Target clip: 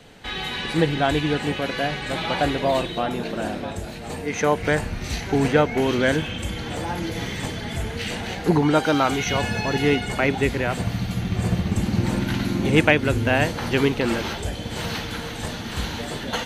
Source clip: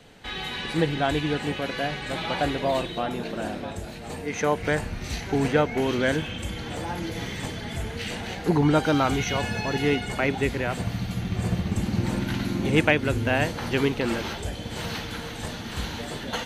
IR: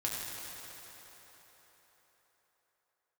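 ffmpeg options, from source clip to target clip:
-filter_complex "[0:a]asettb=1/sr,asplit=3[a][b][c];[a]atrim=end=8.594[d];[b]atrim=start=8.59:end=9.26,asetpts=PTS-STARTPTS,afade=t=in:d=0.004:c=qsin,afade=t=out:st=0.666:d=0.004:c=qsin,lowshelf=f=140:g=-11[e];[c]atrim=start=9.256[f];[d][e]acrossfade=d=0.004:c1=hsin:c2=qsin[g];[g][f]acrossfade=d=0.004:c1=qsin:c2=hsin,volume=3.5dB"

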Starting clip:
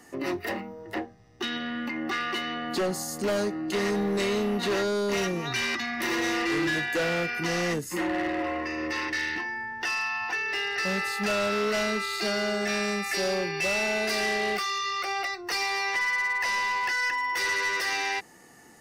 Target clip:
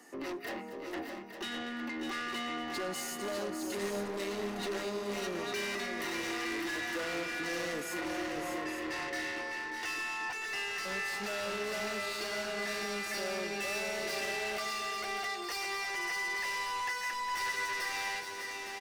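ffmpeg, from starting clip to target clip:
-filter_complex "[0:a]highpass=f=220:w=0.5412,highpass=f=220:w=1.3066,asoftclip=type=tanh:threshold=-31.5dB,asplit=2[a][b];[b]aecho=0:1:239|587|607|858:0.2|0.282|0.447|0.355[c];[a][c]amix=inputs=2:normalize=0,volume=-3.5dB"

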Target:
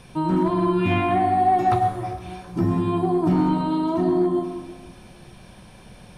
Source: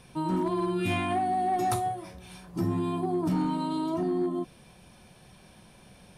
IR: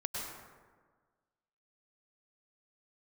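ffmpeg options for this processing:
-filter_complex "[0:a]highshelf=f=11k:g=-5.5,asplit=2[a][b];[1:a]atrim=start_sample=2205,lowshelf=f=78:g=10[c];[b][c]afir=irnorm=-1:irlink=0,volume=-5.5dB[d];[a][d]amix=inputs=2:normalize=0,acrossover=split=3300[e][f];[f]acompressor=threshold=-56dB:ratio=4:attack=1:release=60[g];[e][g]amix=inputs=2:normalize=0,volume=3.5dB"

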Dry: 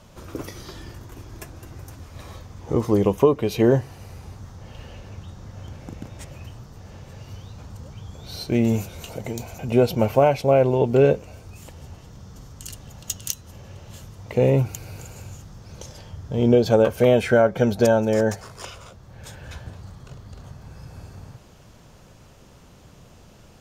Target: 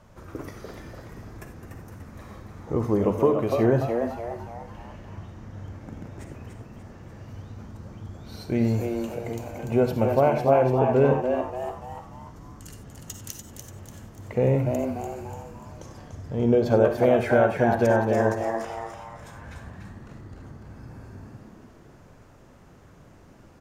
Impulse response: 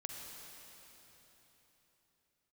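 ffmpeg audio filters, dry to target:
-filter_complex "[0:a]highshelf=f=2.4k:t=q:w=1.5:g=-6,asplit=6[a][b][c][d][e][f];[b]adelay=292,afreqshift=120,volume=-6dB[g];[c]adelay=584,afreqshift=240,volume=-13.5dB[h];[d]adelay=876,afreqshift=360,volume=-21.1dB[i];[e]adelay=1168,afreqshift=480,volume=-28.6dB[j];[f]adelay=1460,afreqshift=600,volume=-36.1dB[k];[a][g][h][i][j][k]amix=inputs=6:normalize=0[l];[1:a]atrim=start_sample=2205,atrim=end_sample=4410[m];[l][m]afir=irnorm=-1:irlink=0"

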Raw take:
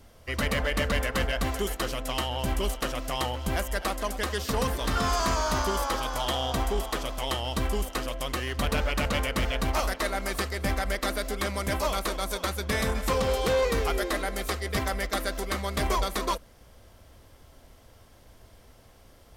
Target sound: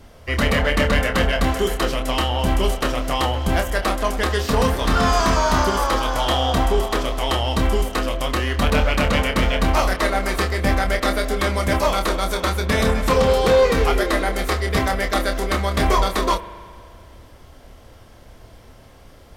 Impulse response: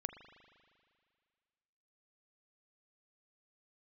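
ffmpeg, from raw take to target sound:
-filter_complex "[0:a]highshelf=f=5.6k:g=-7,asplit=2[a][b];[1:a]atrim=start_sample=2205,adelay=27[c];[b][c]afir=irnorm=-1:irlink=0,volume=-4dB[d];[a][d]amix=inputs=2:normalize=0,volume=8dB"

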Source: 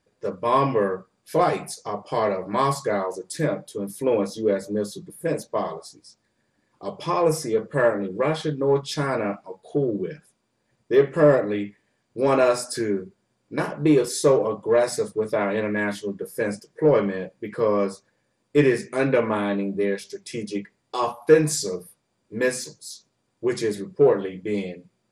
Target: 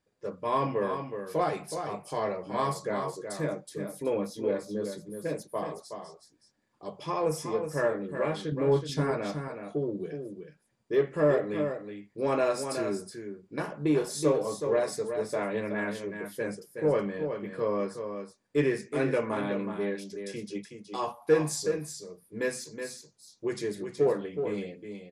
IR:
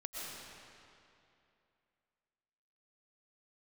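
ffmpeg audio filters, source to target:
-filter_complex "[0:a]asettb=1/sr,asplit=3[a][b][c];[a]atrim=end=8.524[d];[b]atrim=start=8.52:end=9.11,asetpts=PTS-STARTPTS,afade=t=in:d=0.004:c=qsin,afade=t=out:st=0.586:d=0.004:c=qsin,lowshelf=f=350:g=8.5[e];[c]atrim=start=9.106[f];[d][e]acrossfade=d=0.004:c1=hsin:c2=qsin[g];[g][f]acrossfade=d=0.004:c1=qsin:c2=hsin,aecho=1:1:371:0.422,volume=-8dB"

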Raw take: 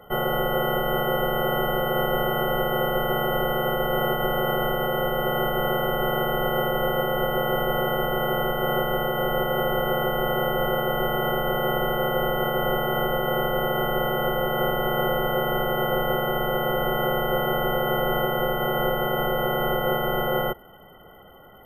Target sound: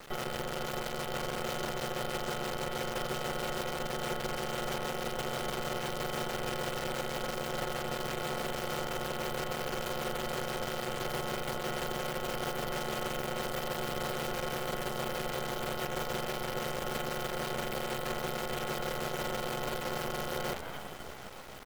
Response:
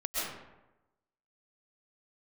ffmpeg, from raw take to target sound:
-filter_complex "[0:a]lowpass=f=3.8k:p=1,asplit=6[a][b][c][d][e][f];[b]adelay=82,afreqshift=49,volume=-18dB[g];[c]adelay=164,afreqshift=98,volume=-23.2dB[h];[d]adelay=246,afreqshift=147,volume=-28.4dB[i];[e]adelay=328,afreqshift=196,volume=-33.6dB[j];[f]adelay=410,afreqshift=245,volume=-38.8dB[k];[a][g][h][i][j][k]amix=inputs=6:normalize=0,dynaudnorm=f=110:g=21:m=12.5dB,asplit=2[l][m];[m]asoftclip=type=tanh:threshold=-18.5dB,volume=-6.5dB[n];[l][n]amix=inputs=2:normalize=0,flanger=delay=7.6:depth=8.5:regen=-86:speed=1.4:shape=triangular,areverse,acompressor=threshold=-25dB:ratio=12,areverse,asplit=2[o][p];[p]adelay=14,volume=-9.5dB[q];[o][q]amix=inputs=2:normalize=0,acrusher=bits=5:dc=4:mix=0:aa=0.000001,alimiter=level_in=4dB:limit=-24dB:level=0:latency=1:release=71,volume=-4dB,volume=2dB" -ar 44100 -c:a nellymoser

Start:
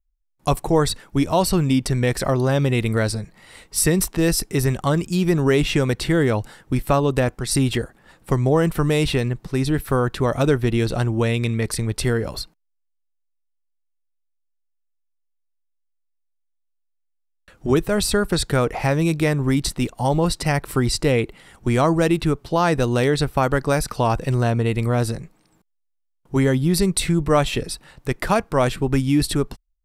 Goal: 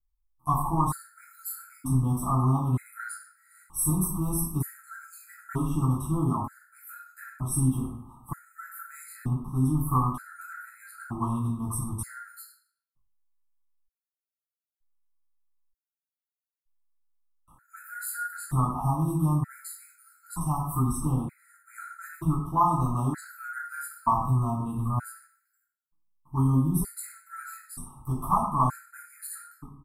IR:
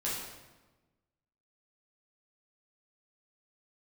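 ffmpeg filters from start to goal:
-filter_complex "[0:a]firequalizer=gain_entry='entry(150,0);entry(300,-4);entry(480,-26);entry(760,-1);entry(1100,10);entry(1800,-11);entry(2600,-27);entry(5100,-19);entry(8500,1);entry(13000,8)':delay=0.05:min_phase=1,asplit=2[a][b];[b]acompressor=threshold=-28dB:ratio=6,volume=-2dB[c];[a][c]amix=inputs=2:normalize=0[d];[1:a]atrim=start_sample=2205,asetrate=83790,aresample=44100[e];[d][e]afir=irnorm=-1:irlink=0,afftfilt=real='re*gt(sin(2*PI*0.54*pts/sr)*(1-2*mod(floor(b*sr/1024/1300),2)),0)':imag='im*gt(sin(2*PI*0.54*pts/sr)*(1-2*mod(floor(b*sr/1024/1300),2)),0)':win_size=1024:overlap=0.75,volume=-6.5dB"

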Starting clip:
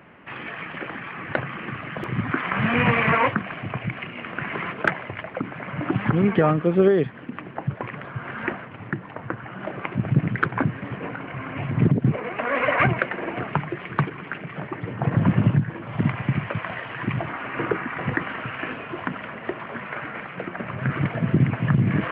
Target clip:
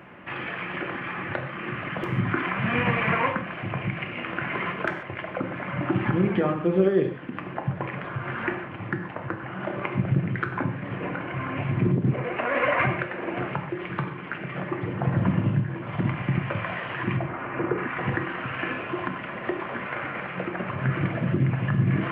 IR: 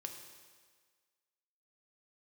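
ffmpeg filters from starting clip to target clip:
-filter_complex "[0:a]asettb=1/sr,asplit=3[a][b][c];[a]atrim=end=17.174[d];[b]atrim=start=17.17:end=17.78,asetpts=PTS-STARTPTS,afade=t=in:d=0.004:c=qsin,afade=t=out:st=0.606:d=0.004:c=qsin,lowpass=f=1.1k:p=1[e];[c]atrim=start=17.776[f];[d][e]acrossfade=d=0.004:c1=hsin:c2=qsin[g];[g][f]acrossfade=d=0.004:c1=qsin:c2=hsin,asplit=2[h][i];[i]acompressor=threshold=-33dB:ratio=6,volume=1dB[j];[h][j]amix=inputs=2:normalize=0,alimiter=limit=-8.5dB:level=0:latency=1:release=452[k];[1:a]atrim=start_sample=2205,atrim=end_sample=6615[l];[k][l]afir=irnorm=-1:irlink=0"

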